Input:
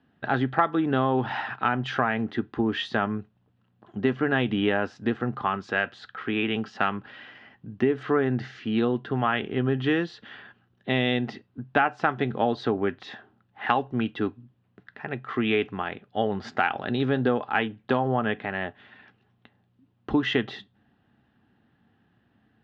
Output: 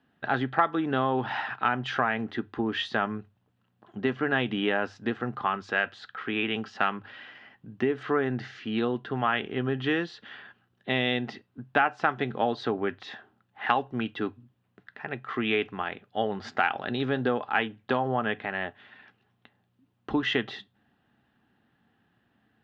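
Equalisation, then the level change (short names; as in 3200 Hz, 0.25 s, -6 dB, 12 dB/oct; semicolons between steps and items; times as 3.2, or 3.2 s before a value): low shelf 460 Hz -5.5 dB; notches 50/100 Hz; 0.0 dB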